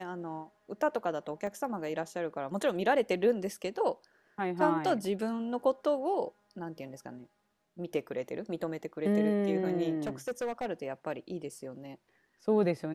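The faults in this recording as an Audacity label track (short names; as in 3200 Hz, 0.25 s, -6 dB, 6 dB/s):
1.470000	1.470000	gap 2.2 ms
10.060000	10.660000	clipped -30 dBFS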